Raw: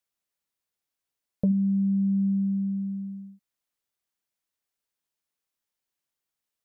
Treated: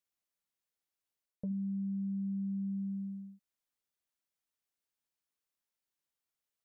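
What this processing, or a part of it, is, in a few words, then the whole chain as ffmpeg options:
compression on the reversed sound: -af "areverse,acompressor=threshold=-29dB:ratio=10,areverse,volume=-5dB"

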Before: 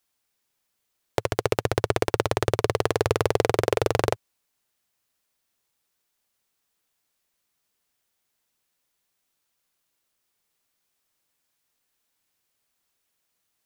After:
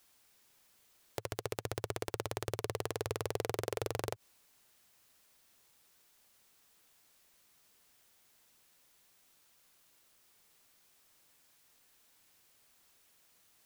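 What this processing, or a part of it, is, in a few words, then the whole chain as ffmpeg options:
de-esser from a sidechain: -filter_complex "[0:a]asplit=2[a][b];[b]highpass=f=6.4k:w=0.5412,highpass=f=6.4k:w=1.3066,apad=whole_len=601977[c];[a][c]sidechaincompress=threshold=-50dB:ratio=12:attack=0.71:release=57,volume=9dB"

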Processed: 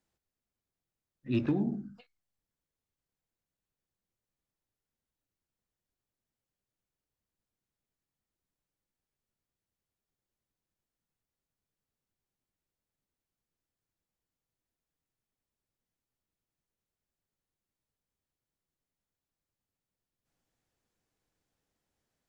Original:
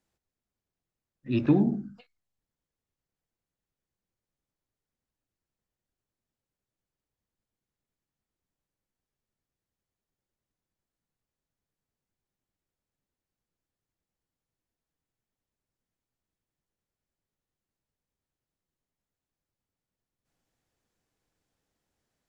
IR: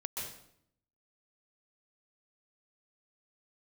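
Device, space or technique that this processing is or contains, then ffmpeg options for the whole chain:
limiter into clipper: -af "alimiter=limit=-16.5dB:level=0:latency=1:release=454,asoftclip=type=hard:threshold=-18dB,volume=-2.5dB"

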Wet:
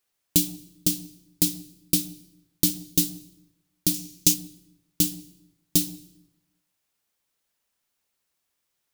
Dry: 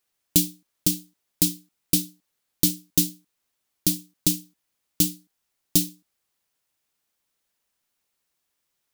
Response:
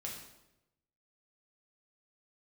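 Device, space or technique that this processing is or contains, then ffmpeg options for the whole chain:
saturated reverb return: -filter_complex "[0:a]asplit=2[a][b];[1:a]atrim=start_sample=2205[c];[b][c]afir=irnorm=-1:irlink=0,asoftclip=type=tanh:threshold=-20.5dB,volume=-9dB[d];[a][d]amix=inputs=2:normalize=0,asettb=1/sr,asplit=3[e][f][g];[e]atrim=end=3.944[h];[f]atrim=start=3.94:end=4.34,asetpts=PTS-STARTPTS,afade=t=in:d=0.004:c=qsin,afade=t=out:st=0.396:d=0.004:c=qsin,equalizer=f=2.5k:t=o:w=0.67:g=5,equalizer=f=6.3k:t=o:w=0.67:g=8,equalizer=f=16k:t=o:w=0.67:g=5[i];[g]atrim=start=4.336[j];[h][i]acrossfade=d=0.004:c1=hsin:c2=qsin[k];[k][j]acrossfade=d=0.004:c1=qsin:c2=hsin,volume=-2dB"

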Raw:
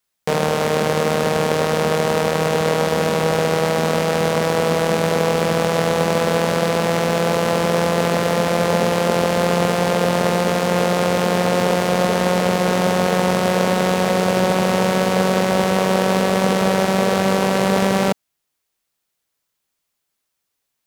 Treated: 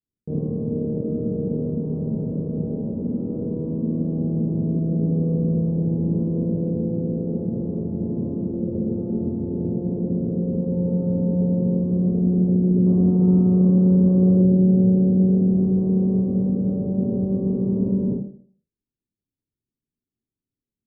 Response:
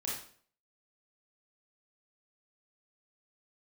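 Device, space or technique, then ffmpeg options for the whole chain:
next room: -filter_complex "[0:a]lowpass=f=320:w=0.5412,lowpass=f=320:w=1.3066[a];[1:a]atrim=start_sample=2205[b];[a][b]afir=irnorm=-1:irlink=0,asettb=1/sr,asplit=3[c][d][e];[c]atrim=end=12.864[f];[d]atrim=start=12.86:end=14.42,asetpts=PTS-STARTPTS,afade=t=in:d=0.004:c=qsin,afade=t=out:st=1.556:d=0.004:c=qsin,equalizer=f=1.2k:w=1.3:g=12.5[g];[e]atrim=start=14.416[h];[f][g]acrossfade=d=0.004:c1=hsin:c2=qsin[i];[i][h]acrossfade=d=0.004:c1=qsin:c2=hsin"

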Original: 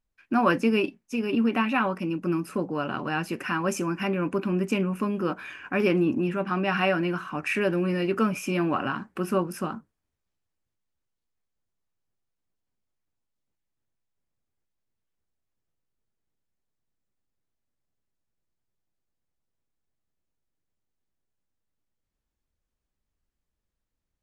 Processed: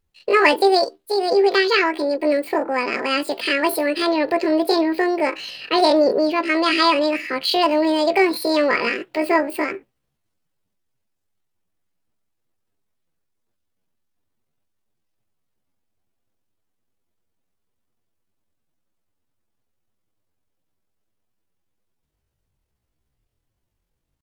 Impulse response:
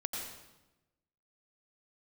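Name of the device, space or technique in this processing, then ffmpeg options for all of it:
chipmunk voice: -af "asetrate=76340,aresample=44100,atempo=0.577676,volume=7.5dB"

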